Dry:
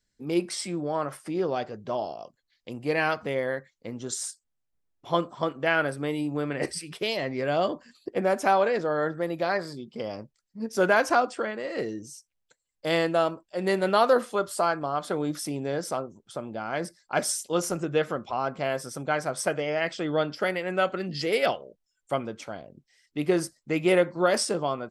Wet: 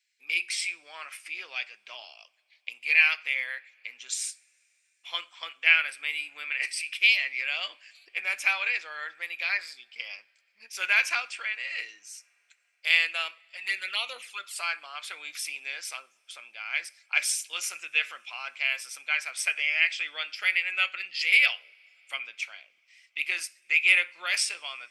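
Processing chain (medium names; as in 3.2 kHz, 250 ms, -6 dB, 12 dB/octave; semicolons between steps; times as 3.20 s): 13.31–14.56 s: touch-sensitive flanger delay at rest 2.2 ms, full sweep at -17.5 dBFS; resonant high-pass 2.4 kHz, resonance Q 7.3; two-slope reverb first 0.46 s, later 4.5 s, from -21 dB, DRR 19.5 dB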